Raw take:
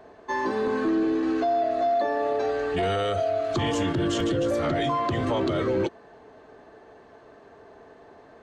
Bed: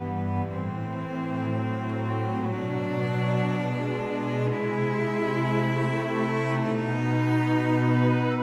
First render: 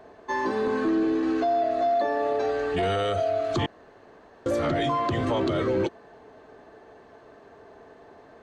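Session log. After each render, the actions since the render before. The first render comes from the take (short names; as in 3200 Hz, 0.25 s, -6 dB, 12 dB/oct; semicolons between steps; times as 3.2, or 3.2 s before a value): 3.66–4.46 room tone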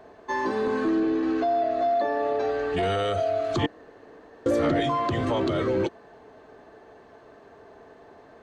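1–2.73 air absorption 57 m; 3.63–4.8 small resonant body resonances 300/460/1800 Hz, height 7 dB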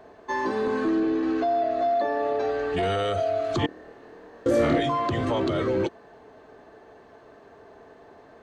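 3.66–4.78 flutter echo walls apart 4.4 m, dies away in 0.4 s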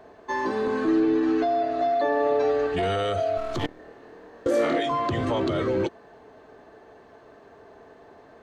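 0.87–2.67 comb 6.8 ms, depth 67%; 3.37–3.79 half-wave gain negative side -12 dB; 4.47–4.91 HPF 310 Hz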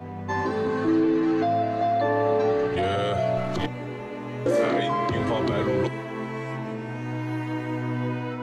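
add bed -6 dB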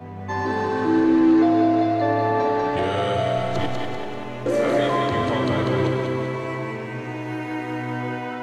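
thinning echo 0.194 s, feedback 49%, high-pass 400 Hz, level -3.5 dB; Schroeder reverb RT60 2.9 s, combs from 31 ms, DRR 4.5 dB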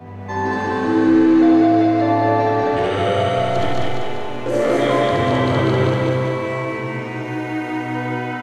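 loudspeakers at several distances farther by 24 m -1 dB, 75 m -1 dB, 91 m -9 dB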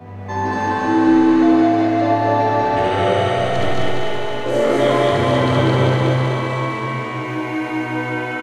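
doubler 22 ms -10.5 dB; thinning echo 0.257 s, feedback 70%, high-pass 210 Hz, level -6 dB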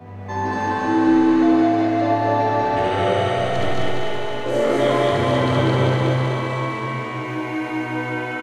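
gain -2.5 dB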